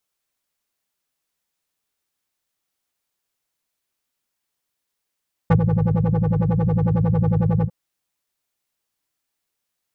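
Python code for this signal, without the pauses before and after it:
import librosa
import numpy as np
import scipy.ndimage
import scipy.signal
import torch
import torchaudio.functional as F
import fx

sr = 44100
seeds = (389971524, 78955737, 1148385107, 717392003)

y = fx.sub_patch_wobble(sr, seeds[0], note=45, wave='triangle', wave2='square', interval_st=7, level2_db=-0.5, sub_db=-15.0, noise_db=-4.0, kind='lowpass', cutoff_hz=280.0, q=1.4, env_oct=1.0, env_decay_s=0.06, env_sustain_pct=10, attack_ms=7.2, decay_s=0.08, sustain_db=-6.5, release_s=0.06, note_s=2.14, lfo_hz=11.0, wobble_oct=1.6)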